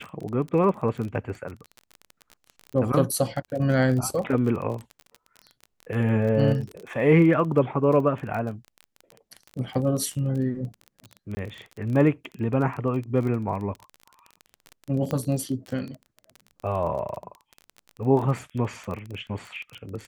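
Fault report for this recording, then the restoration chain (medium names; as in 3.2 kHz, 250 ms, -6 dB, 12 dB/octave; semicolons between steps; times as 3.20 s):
crackle 26 per s -31 dBFS
11.35–11.37 s: dropout 20 ms
15.11 s: pop -15 dBFS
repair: de-click; interpolate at 11.35 s, 20 ms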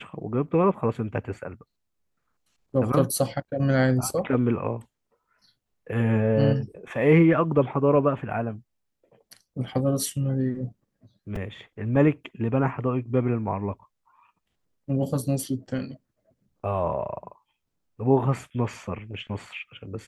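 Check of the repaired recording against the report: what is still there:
nothing left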